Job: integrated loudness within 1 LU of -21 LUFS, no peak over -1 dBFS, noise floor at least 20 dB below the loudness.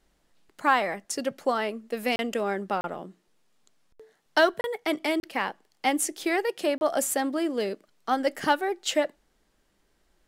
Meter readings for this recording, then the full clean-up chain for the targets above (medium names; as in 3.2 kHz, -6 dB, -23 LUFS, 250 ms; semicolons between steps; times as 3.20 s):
dropouts 5; longest dropout 31 ms; loudness -27.5 LUFS; peak level -8.0 dBFS; loudness target -21.0 LUFS
-> interpolate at 2.16/2.81/4.61/5.20/6.78 s, 31 ms; trim +6.5 dB